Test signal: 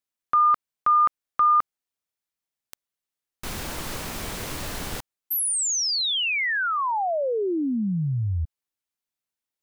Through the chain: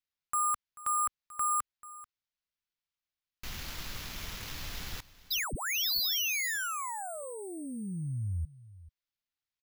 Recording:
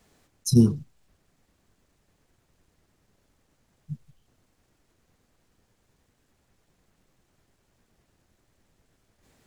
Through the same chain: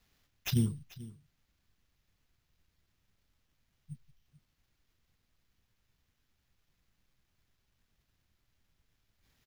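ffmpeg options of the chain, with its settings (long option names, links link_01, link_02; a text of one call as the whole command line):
ffmpeg -i in.wav -filter_complex "[0:a]acrusher=samples=5:mix=1:aa=0.000001,equalizer=frequency=470:width=0.37:gain=-12.5,asplit=2[link_01][link_02];[link_02]aecho=0:1:438:0.119[link_03];[link_01][link_03]amix=inputs=2:normalize=0,volume=-4.5dB" out.wav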